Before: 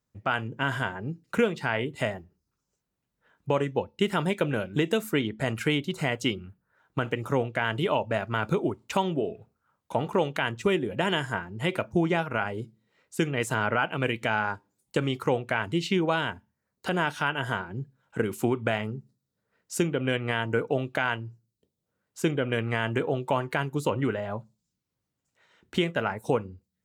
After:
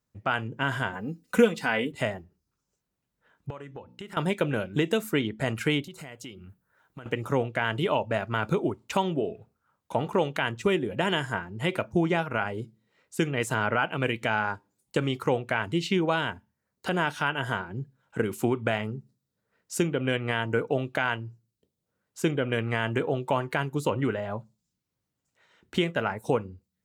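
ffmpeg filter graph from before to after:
ffmpeg -i in.wav -filter_complex "[0:a]asettb=1/sr,asplit=3[link_01][link_02][link_03];[link_01]atrim=end=0.934[link_04];[link_02]atrim=start=0.93:end=1.92,asetpts=PTS-STARTPTS,afade=type=in:duration=0.004:curve=qsin,afade=type=out:start_time=0.986:duration=0.004:curve=qsin,highshelf=frequency=6700:gain=8.5,aecho=1:1:4:0.73,atrim=end_sample=43659[link_05];[link_03]atrim=start=1.916[link_06];[link_04][link_05]acrossfade=duration=0.004:curve1=hsin:curve2=qsin[link_07];[link_07][link_06]acrossfade=duration=0.004:curve1=qsin:curve2=hsin,asettb=1/sr,asplit=3[link_08][link_09][link_10];[link_08]atrim=end=3.504[link_11];[link_09]atrim=start=3.5:end=4.17,asetpts=PTS-STARTPTS,afade=type=in:duration=0.004:curve=qsin,afade=type=out:start_time=0.666:duration=0.004:curve=qsin,equalizer=frequency=1300:width=1.3:gain=6,bandreject=frequency=60.53:width_type=h:width=4,bandreject=frequency=121.06:width_type=h:width=4,bandreject=frequency=181.59:width_type=h:width=4,bandreject=frequency=242.12:width_type=h:width=4,bandreject=frequency=302.65:width_type=h:width=4,acompressor=threshold=-40dB:ratio=4:attack=3.2:release=140:knee=1:detection=peak[link_12];[link_10]atrim=start=4.166[link_13];[link_11][link_12]acrossfade=duration=0.004:curve1=hsin:curve2=qsin[link_14];[link_14][link_13]acrossfade=duration=0.004:curve1=qsin:curve2=hsin,asettb=1/sr,asplit=3[link_15][link_16][link_17];[link_15]atrim=end=5.844[link_18];[link_16]atrim=start=5.84:end=7.06,asetpts=PTS-STARTPTS,afade=type=in:duration=0.004:curve=qsin,afade=type=out:start_time=1.216:duration=0.004:curve=qsin,highshelf=frequency=8000:gain=9,acompressor=threshold=-43dB:ratio=3:attack=3.2:release=140:knee=1:detection=peak[link_19];[link_17]atrim=start=7.056[link_20];[link_18][link_19]acrossfade=duration=0.004:curve1=hsin:curve2=qsin[link_21];[link_21][link_20]acrossfade=duration=0.004:curve1=qsin:curve2=hsin" out.wav

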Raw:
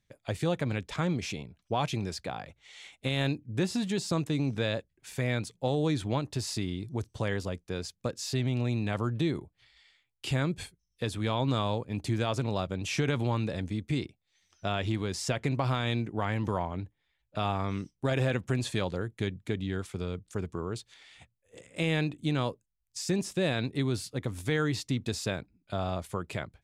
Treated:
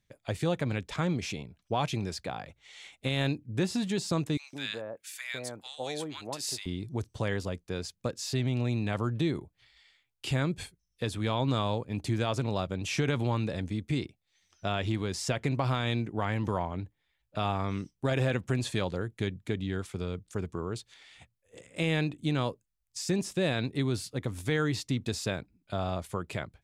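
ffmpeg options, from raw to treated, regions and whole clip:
ffmpeg -i in.wav -filter_complex "[0:a]asettb=1/sr,asplit=3[link_01][link_02][link_03];[link_01]atrim=end=4.374[link_04];[link_02]atrim=start=4.37:end=6.66,asetpts=PTS-STARTPTS,afade=type=in:duration=0.004:curve=qsin,afade=type=out:start_time=2.286:duration=0.004:curve=qsin,highpass=frequency=910:poles=1,highshelf=frequency=8000:gain=6.5,acrossover=split=1200[link_05][link_06];[link_05]adelay=160[link_07];[link_07][link_06]amix=inputs=2:normalize=0,atrim=end_sample=100989[link_08];[link_03]atrim=start=6.656[link_09];[link_04][link_08]acrossfade=duration=0.004:curve1=hsin:curve2=qsin[link_10];[link_10][link_09]acrossfade=duration=0.004:curve1=qsin:curve2=hsin" out.wav

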